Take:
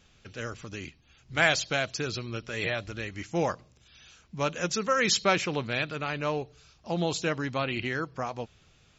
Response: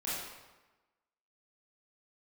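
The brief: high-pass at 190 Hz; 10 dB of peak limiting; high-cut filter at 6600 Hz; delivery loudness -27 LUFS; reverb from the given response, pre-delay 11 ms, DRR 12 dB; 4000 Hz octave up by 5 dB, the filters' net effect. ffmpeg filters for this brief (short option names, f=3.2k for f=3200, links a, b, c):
-filter_complex "[0:a]highpass=190,lowpass=6.6k,equalizer=f=4k:t=o:g=7,alimiter=limit=-16.5dB:level=0:latency=1,asplit=2[a][b];[1:a]atrim=start_sample=2205,adelay=11[c];[b][c]afir=irnorm=-1:irlink=0,volume=-16.5dB[d];[a][d]amix=inputs=2:normalize=0,volume=3.5dB"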